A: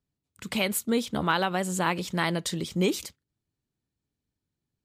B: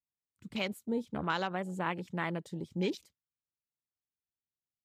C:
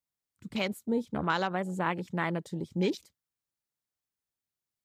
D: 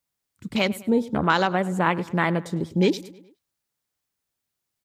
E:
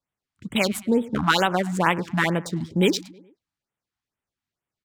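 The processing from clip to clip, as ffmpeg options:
ffmpeg -i in.wav -af "afwtdn=0.0178,volume=-7.5dB" out.wav
ffmpeg -i in.wav -af "equalizer=frequency=2800:width=2.3:gain=-3,volume=4dB" out.wav
ffmpeg -i in.wav -filter_complex "[0:a]asplit=2[link_01][link_02];[link_02]adelay=104,lowpass=frequency=4800:poles=1,volume=-19dB,asplit=2[link_03][link_04];[link_04]adelay=104,lowpass=frequency=4800:poles=1,volume=0.53,asplit=2[link_05][link_06];[link_06]adelay=104,lowpass=frequency=4800:poles=1,volume=0.53,asplit=2[link_07][link_08];[link_08]adelay=104,lowpass=frequency=4800:poles=1,volume=0.53[link_09];[link_01][link_03][link_05][link_07][link_09]amix=inputs=5:normalize=0,volume=8.5dB" out.wav
ffmpeg -i in.wav -af "crystalizer=i=3.5:c=0,adynamicsmooth=sensitivity=7:basefreq=2200,afftfilt=real='re*(1-between(b*sr/1024,420*pow(5500/420,0.5+0.5*sin(2*PI*2.2*pts/sr))/1.41,420*pow(5500/420,0.5+0.5*sin(2*PI*2.2*pts/sr))*1.41))':imag='im*(1-between(b*sr/1024,420*pow(5500/420,0.5+0.5*sin(2*PI*2.2*pts/sr))/1.41,420*pow(5500/420,0.5+0.5*sin(2*PI*2.2*pts/sr))*1.41))':win_size=1024:overlap=0.75" out.wav

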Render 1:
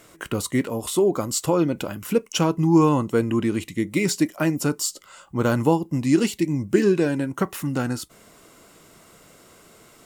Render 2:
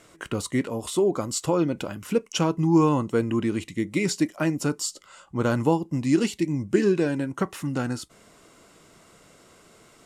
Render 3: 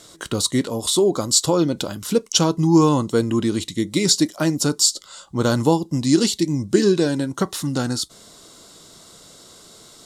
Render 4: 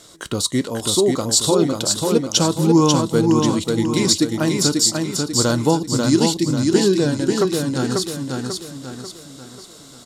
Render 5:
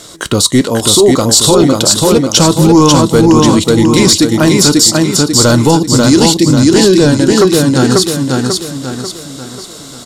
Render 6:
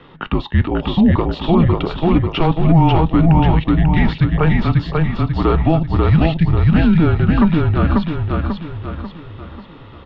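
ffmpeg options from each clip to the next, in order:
ffmpeg -i in.wav -af "lowpass=9400,volume=-2.5dB" out.wav
ffmpeg -i in.wav -af "highshelf=frequency=3100:width_type=q:width=3:gain=6.5,volume=4.5dB" out.wav
ffmpeg -i in.wav -af "aecho=1:1:541|1082|1623|2164|2705:0.668|0.287|0.124|0.0531|0.0228" out.wav
ffmpeg -i in.wav -af "apsyclip=14dB,volume=-1.5dB" out.wav
ffmpeg -i in.wav -af "highpass=frequency=160:width_type=q:width=0.5412,highpass=frequency=160:width_type=q:width=1.307,lowpass=frequency=2900:width_type=q:width=0.5176,lowpass=frequency=2900:width_type=q:width=0.7071,lowpass=frequency=2900:width_type=q:width=1.932,afreqshift=-170,volume=-4.5dB" out.wav

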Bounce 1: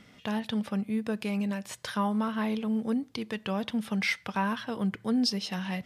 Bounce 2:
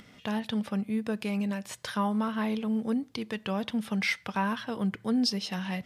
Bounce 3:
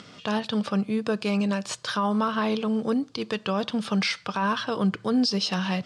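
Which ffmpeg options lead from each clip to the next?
ffmpeg -i in.wav -af "acompressor=mode=upward:threshold=-50dB:ratio=2.5" out.wav
ffmpeg -i in.wav -af "highpass=120,equalizer=frequency=230:width_type=q:width=4:gain=-7,equalizer=frequency=820:width_type=q:width=4:gain=-3,equalizer=frequency=1200:width_type=q:width=4:gain=4,equalizer=frequency=2000:width_type=q:width=4:gain=-8,equalizer=frequency=4600:width_type=q:width=4:gain=5,lowpass=frequency=8300:width=0.5412,lowpass=frequency=8300:width=1.3066,alimiter=level_in=1dB:limit=-24dB:level=0:latency=1:release=53,volume=-1dB,volume=9dB" out.wav

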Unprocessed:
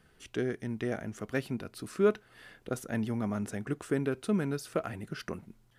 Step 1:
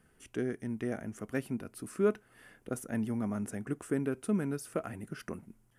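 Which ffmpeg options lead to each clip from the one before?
ffmpeg -i in.wav -af "equalizer=frequency=250:width_type=o:width=0.67:gain=4,equalizer=frequency=4000:width_type=o:width=0.67:gain=-9,equalizer=frequency=10000:width_type=o:width=0.67:gain=7,volume=-3.5dB" out.wav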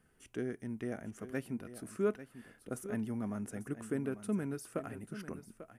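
ffmpeg -i in.wav -af "aecho=1:1:844:0.237,volume=-4dB" out.wav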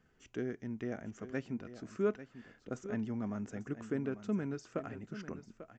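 ffmpeg -i in.wav -af "aresample=16000,aresample=44100" out.wav

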